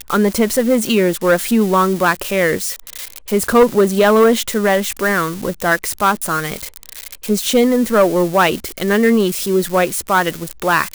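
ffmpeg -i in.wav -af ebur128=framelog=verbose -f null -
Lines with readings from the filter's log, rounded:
Integrated loudness:
  I:         -15.5 LUFS
  Threshold: -25.9 LUFS
Loudness range:
  LRA:         2.6 LU
  Threshold: -35.9 LUFS
  LRA low:   -17.5 LUFS
  LRA high:  -14.9 LUFS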